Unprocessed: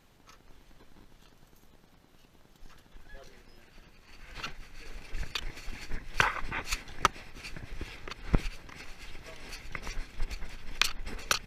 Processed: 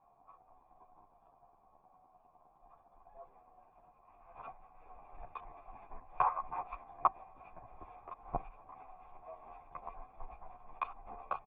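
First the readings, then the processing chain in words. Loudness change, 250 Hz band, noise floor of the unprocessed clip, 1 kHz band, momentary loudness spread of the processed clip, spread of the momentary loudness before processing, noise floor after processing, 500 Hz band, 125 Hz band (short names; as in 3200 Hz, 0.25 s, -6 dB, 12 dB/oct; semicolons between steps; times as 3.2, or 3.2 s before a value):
-5.5 dB, -16.0 dB, -61 dBFS, 0.0 dB, 23 LU, 19 LU, -68 dBFS, -4.0 dB, -17.0 dB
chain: vocal tract filter a; endless flanger 11 ms -0.72 Hz; gain +14 dB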